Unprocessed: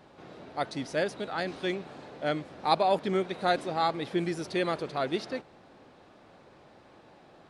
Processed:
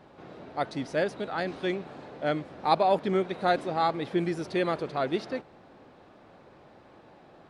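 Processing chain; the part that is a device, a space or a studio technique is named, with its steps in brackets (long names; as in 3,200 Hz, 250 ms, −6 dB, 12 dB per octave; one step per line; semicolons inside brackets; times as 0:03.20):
behind a face mask (high-shelf EQ 3,400 Hz −7.5 dB)
level +2 dB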